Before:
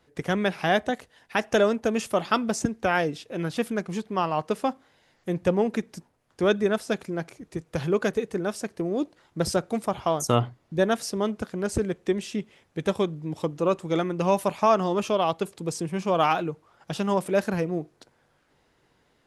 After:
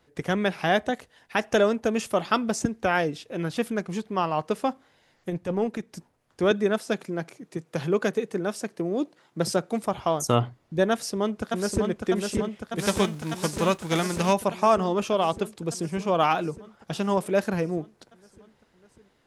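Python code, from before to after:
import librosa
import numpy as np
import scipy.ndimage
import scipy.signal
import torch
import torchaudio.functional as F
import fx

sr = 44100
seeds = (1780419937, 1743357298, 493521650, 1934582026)

y = fx.transient(x, sr, attack_db=-10, sustain_db=-5, at=(5.29, 5.92), fade=0.02)
y = fx.highpass(y, sr, hz=130.0, slope=24, at=(6.51, 9.83))
y = fx.echo_throw(y, sr, start_s=10.91, length_s=0.97, ms=600, feedback_pct=75, wet_db=-3.5)
y = fx.envelope_flatten(y, sr, power=0.6, at=(12.78, 14.32), fade=0.02)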